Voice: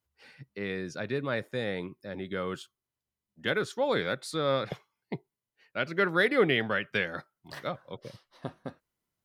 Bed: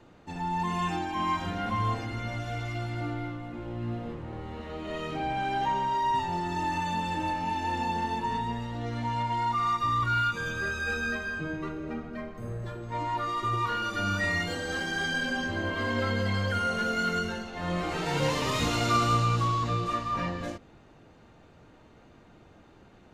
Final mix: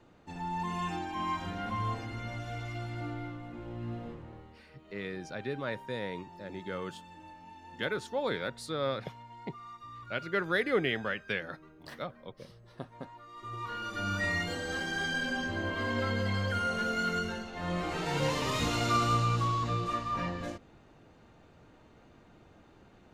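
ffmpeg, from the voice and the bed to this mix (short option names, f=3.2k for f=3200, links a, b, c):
-filter_complex "[0:a]adelay=4350,volume=-4.5dB[a];[1:a]volume=12.5dB,afade=t=out:st=4.04:d=0.56:silence=0.16788,afade=t=in:st=13.29:d=0.96:silence=0.133352[b];[a][b]amix=inputs=2:normalize=0"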